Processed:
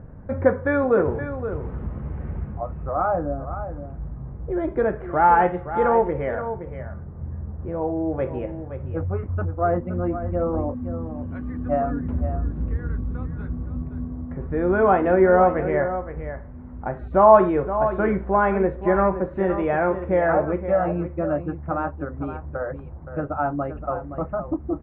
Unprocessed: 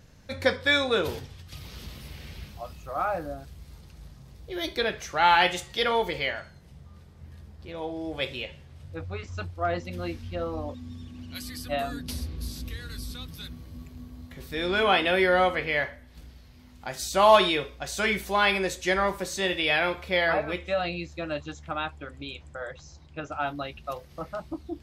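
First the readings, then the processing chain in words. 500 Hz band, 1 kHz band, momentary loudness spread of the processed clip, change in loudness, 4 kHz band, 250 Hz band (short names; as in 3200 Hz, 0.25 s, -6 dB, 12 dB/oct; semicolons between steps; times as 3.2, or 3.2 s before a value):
+7.5 dB, +5.0 dB, 15 LU, +3.5 dB, under -25 dB, +9.5 dB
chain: inverse Chebyshev low-pass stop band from 4800 Hz, stop band 60 dB; tilt shelf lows +4 dB; in parallel at 0 dB: compressor, threshold -37 dBFS, peak gain reduction 23.5 dB; on the sum: echo 0.52 s -10.5 dB; gain +3.5 dB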